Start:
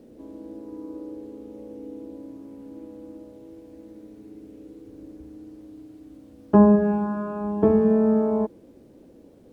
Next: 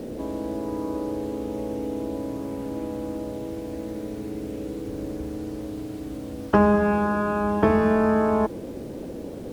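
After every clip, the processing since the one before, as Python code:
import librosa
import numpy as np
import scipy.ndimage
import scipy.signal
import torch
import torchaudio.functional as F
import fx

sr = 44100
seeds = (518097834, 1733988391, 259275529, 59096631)

y = fx.spectral_comp(x, sr, ratio=2.0)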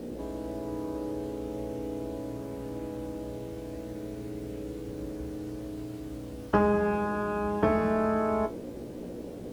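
y = fx.comb_fb(x, sr, f0_hz=60.0, decay_s=0.18, harmonics='all', damping=0.0, mix_pct=90)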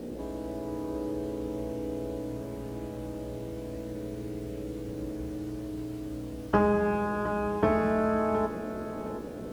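y = fx.echo_feedback(x, sr, ms=717, feedback_pct=33, wet_db=-11.5)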